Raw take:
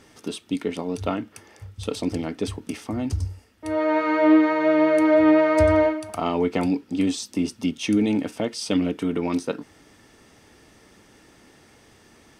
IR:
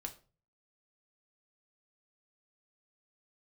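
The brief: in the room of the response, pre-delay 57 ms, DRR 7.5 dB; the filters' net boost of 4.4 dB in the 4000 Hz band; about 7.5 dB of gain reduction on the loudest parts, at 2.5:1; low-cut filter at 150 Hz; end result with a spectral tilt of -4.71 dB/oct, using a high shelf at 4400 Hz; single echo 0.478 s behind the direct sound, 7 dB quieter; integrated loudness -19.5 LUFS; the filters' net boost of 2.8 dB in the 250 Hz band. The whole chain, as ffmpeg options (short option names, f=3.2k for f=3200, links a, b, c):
-filter_complex "[0:a]highpass=150,equalizer=f=250:t=o:g=4,equalizer=f=4k:t=o:g=3.5,highshelf=f=4.4k:g=4,acompressor=threshold=-21dB:ratio=2.5,aecho=1:1:478:0.447,asplit=2[a][b];[1:a]atrim=start_sample=2205,adelay=57[c];[b][c]afir=irnorm=-1:irlink=0,volume=-5dB[d];[a][d]amix=inputs=2:normalize=0,volume=4dB"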